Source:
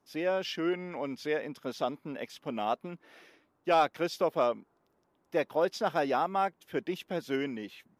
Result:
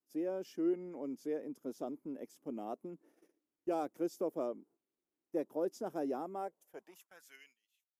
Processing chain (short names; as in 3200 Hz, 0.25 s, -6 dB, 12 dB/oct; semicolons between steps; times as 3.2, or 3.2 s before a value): tilt shelf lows +7 dB, about 930 Hz; high-pass sweep 320 Hz -> 3000 Hz, 6.28–7.57; EQ curve 110 Hz 0 dB, 360 Hz -10 dB, 3900 Hz -14 dB, 7100 Hz +7 dB; gate -60 dBFS, range -15 dB; gain -5 dB; Opus 128 kbps 48000 Hz